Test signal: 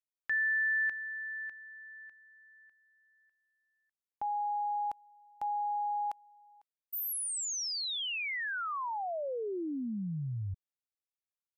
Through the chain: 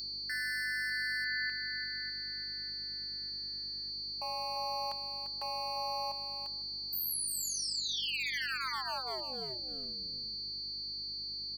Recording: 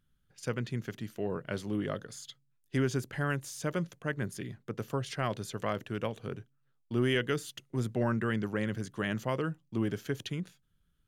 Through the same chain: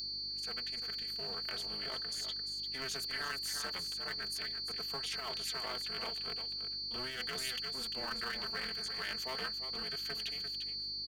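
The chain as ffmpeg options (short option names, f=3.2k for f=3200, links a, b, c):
-filter_complex "[0:a]bass=f=250:g=-7,treble=f=4k:g=-14,aecho=1:1:4.5:0.65,asplit=2[a][b];[b]asoftclip=type=hard:threshold=-33.5dB,volume=-3.5dB[c];[a][c]amix=inputs=2:normalize=0,dynaudnorm=f=370:g=7:m=5dB,aecho=1:1:346:0.335,aeval=exprs='val(0)+0.0141*sin(2*PI*4500*n/s)':c=same,aderivative,acontrast=90,alimiter=level_in=0.5dB:limit=-24dB:level=0:latency=1:release=22,volume=-0.5dB,aeval=exprs='val(0)+0.002*(sin(2*PI*50*n/s)+sin(2*PI*2*50*n/s)/2+sin(2*PI*3*50*n/s)/3+sin(2*PI*4*50*n/s)/4+sin(2*PI*5*50*n/s)/5)':c=same,tremolo=f=260:d=0.974"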